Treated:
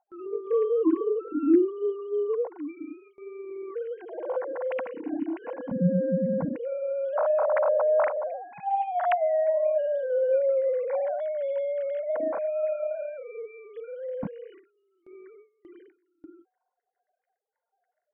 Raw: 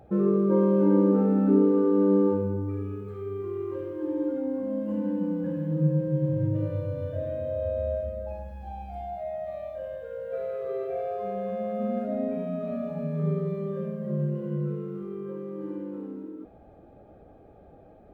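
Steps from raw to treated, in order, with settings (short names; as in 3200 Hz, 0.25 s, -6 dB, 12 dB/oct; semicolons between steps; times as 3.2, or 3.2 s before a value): sine-wave speech; spectral noise reduction 17 dB; gate with hold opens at -45 dBFS; high shelf 2200 Hz +4.5 dB, from 1.28 s +11.5 dB; gain +1.5 dB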